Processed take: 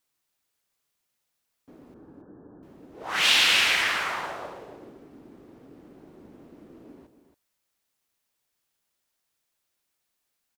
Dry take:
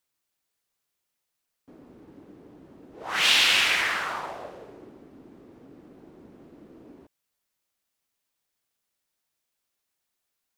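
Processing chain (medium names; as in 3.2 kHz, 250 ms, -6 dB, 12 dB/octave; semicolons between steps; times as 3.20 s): companded quantiser 8-bit; 1.94–2.63 s: brick-wall FIR low-pass 1.8 kHz; on a send: delay 275 ms -10.5 dB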